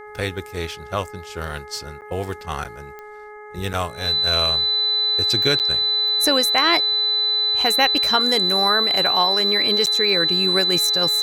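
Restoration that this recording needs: de-click; de-hum 420.8 Hz, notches 5; notch 4000 Hz, Q 30; interpolate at 2.01/2.64/3.73/5.59/9.86, 8.5 ms

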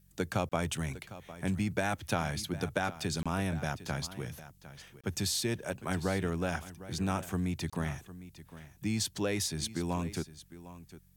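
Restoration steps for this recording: de-hum 45.7 Hz, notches 4; interpolate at 0.49/3.23/5.01/7.7, 26 ms; expander -48 dBFS, range -21 dB; inverse comb 0.755 s -15.5 dB

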